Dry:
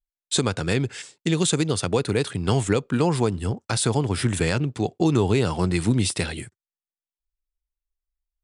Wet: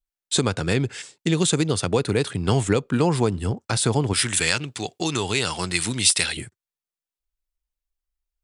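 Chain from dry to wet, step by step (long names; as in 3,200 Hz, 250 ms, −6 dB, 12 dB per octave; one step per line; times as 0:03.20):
0:04.13–0:06.37: tilt shelving filter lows −9.5 dB, about 1,100 Hz
level +1 dB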